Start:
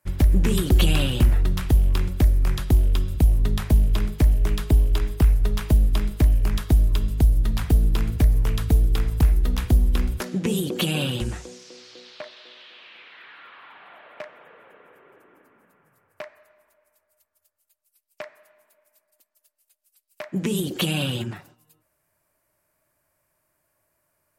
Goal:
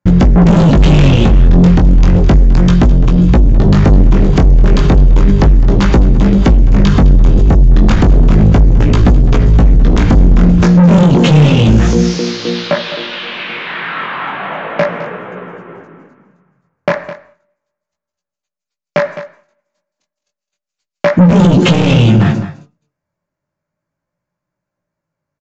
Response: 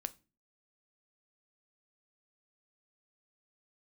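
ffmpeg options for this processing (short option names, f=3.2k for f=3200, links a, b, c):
-filter_complex "[0:a]agate=range=-33dB:threshold=-46dB:ratio=3:detection=peak,equalizer=f=180:w=1.8:g=14,aresample=16000,asoftclip=type=tanh:threshold=-23.5dB,aresample=44100,flanger=delay=15.5:depth=6.7:speed=0.34,aecho=1:1:201:0.168,asplit=2[a][b];[1:a]atrim=start_sample=2205,lowpass=2.4k[c];[b][c]afir=irnorm=-1:irlink=0,volume=-3.5dB[d];[a][d]amix=inputs=2:normalize=0,asetrate=42336,aresample=44100,alimiter=level_in=27.5dB:limit=-1dB:release=50:level=0:latency=1,volume=-1dB"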